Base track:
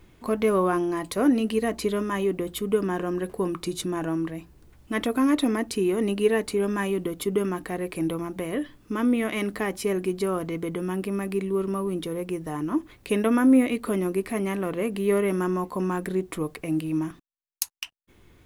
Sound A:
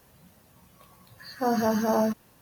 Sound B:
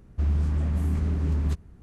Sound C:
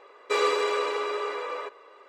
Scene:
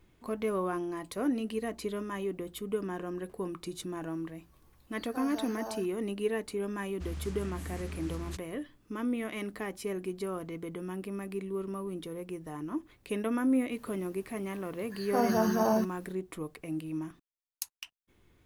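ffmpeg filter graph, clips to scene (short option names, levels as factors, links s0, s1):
-filter_complex "[1:a]asplit=2[s0][s1];[0:a]volume=0.335[s2];[s0]highpass=f=500:p=1[s3];[2:a]tiltshelf=f=1300:g=-9.5[s4];[s3]atrim=end=2.41,asetpts=PTS-STARTPTS,volume=0.211,afade=t=in:d=0.004:c=hsin,afade=t=out:st=2.406:d=0.004:c=hsin,adelay=164493S[s5];[s4]atrim=end=1.82,asetpts=PTS-STARTPTS,volume=0.501,afade=t=in:d=0.004:c=hsin,afade=t=out:st=1.816:d=0.004:c=hsin,adelay=300762S[s6];[s1]atrim=end=2.41,asetpts=PTS-STARTPTS,volume=0.708,afade=t=in:d=0.004:c=hsin,afade=t=out:st=2.406:d=0.004:c=hsin,adelay=13720[s7];[s2][s5][s6][s7]amix=inputs=4:normalize=0"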